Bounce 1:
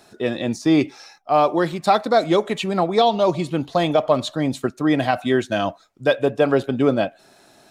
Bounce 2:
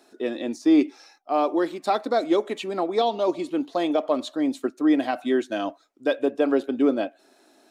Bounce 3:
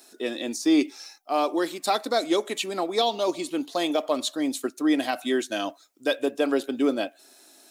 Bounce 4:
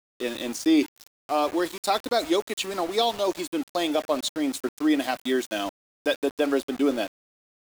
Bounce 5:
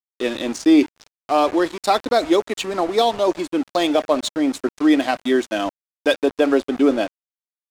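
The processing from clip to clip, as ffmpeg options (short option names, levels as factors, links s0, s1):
-af "lowshelf=f=200:t=q:w=3:g=-12,volume=0.422"
-af "crystalizer=i=5:c=0,volume=0.708"
-af "aeval=exprs='val(0)*gte(abs(val(0)),0.02)':c=same"
-af "adynamicequalizer=threshold=0.00631:dfrequency=3700:dqfactor=0.76:tfrequency=3700:tqfactor=0.76:attack=5:release=100:ratio=0.375:range=2.5:mode=cutabove:tftype=bell,adynamicsmooth=sensitivity=6:basefreq=4500,volume=2.24"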